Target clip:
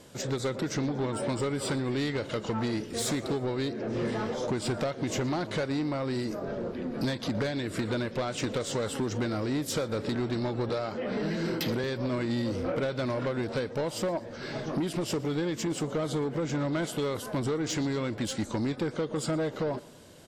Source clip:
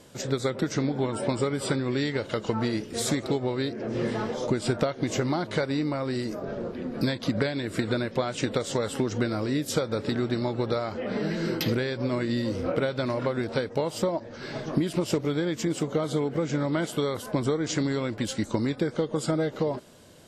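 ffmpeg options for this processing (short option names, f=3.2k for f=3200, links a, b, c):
-filter_complex "[0:a]asettb=1/sr,asplit=3[a][b][c];[a]atrim=end=10.694[d];[b]atrim=start=10.69:end=11.84,asetpts=PTS-STARTPTS,afade=t=in:d=0.004:c=qsin,afade=t=out:st=1.146:d=0.004:c=qsin,highpass=f=110:w=0.5412,highpass=f=110:w=1.3066[e];[c]atrim=start=11.836[f];[d][e]acrossfade=d=0.004:c1=hsin:c2=qsin[g];[g][f]acrossfade=d=0.004:c1=qsin:c2=hsin,asoftclip=type=tanh:threshold=-24dB,aecho=1:1:118|236|354:0.0708|0.0368|0.0191"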